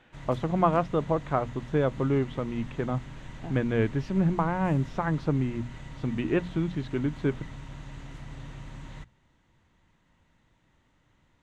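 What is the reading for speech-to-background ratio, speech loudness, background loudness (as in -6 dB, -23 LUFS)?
15.5 dB, -28.5 LUFS, -44.0 LUFS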